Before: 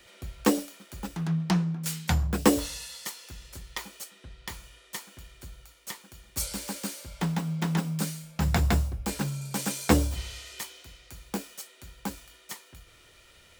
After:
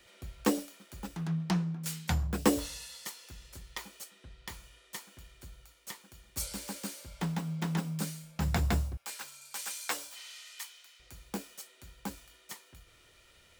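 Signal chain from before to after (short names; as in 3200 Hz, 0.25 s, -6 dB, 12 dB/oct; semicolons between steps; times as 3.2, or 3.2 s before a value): 8.97–11 HPF 1100 Hz 12 dB/oct; gain -5 dB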